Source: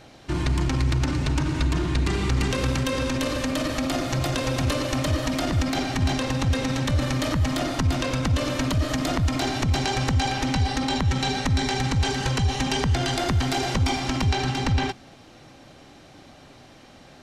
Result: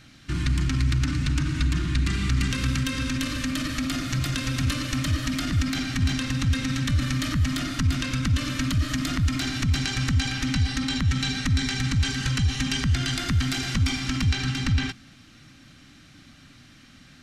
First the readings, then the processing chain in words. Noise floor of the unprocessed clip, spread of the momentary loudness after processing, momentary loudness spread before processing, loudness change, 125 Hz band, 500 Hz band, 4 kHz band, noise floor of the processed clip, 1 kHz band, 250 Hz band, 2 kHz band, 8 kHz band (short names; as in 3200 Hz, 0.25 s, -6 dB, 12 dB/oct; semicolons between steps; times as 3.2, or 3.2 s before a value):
-49 dBFS, 2 LU, 2 LU, -1.0 dB, 0.0 dB, -14.0 dB, 0.0 dB, -51 dBFS, -9.0 dB, -1.5 dB, 0.0 dB, 0.0 dB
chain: band shelf 600 Hz -15.5 dB